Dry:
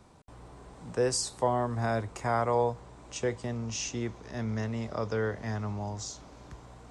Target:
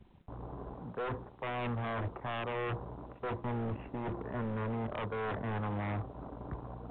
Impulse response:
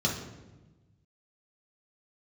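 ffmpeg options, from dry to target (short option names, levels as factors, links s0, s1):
-af "lowpass=f=1600:w=0.5412,lowpass=f=1600:w=1.3066,bandreject=f=173.6:t=h:w=4,bandreject=f=347.2:t=h:w=4,anlmdn=0.00631,lowshelf=f=67:g=-7.5,areverse,acompressor=threshold=0.0141:ratio=12,areverse,aeval=exprs='0.0112*(abs(mod(val(0)/0.0112+3,4)-2)-1)':c=same,volume=2.66" -ar 8000 -c:a pcm_alaw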